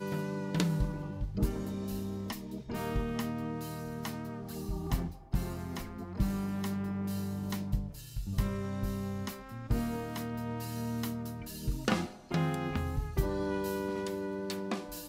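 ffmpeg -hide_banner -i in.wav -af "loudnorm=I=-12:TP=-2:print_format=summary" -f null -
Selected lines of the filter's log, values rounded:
Input Integrated:    -35.7 LUFS
Input True Peak:     -12.7 dBTP
Input LRA:             2.5 LU
Input Threshold:     -45.7 LUFS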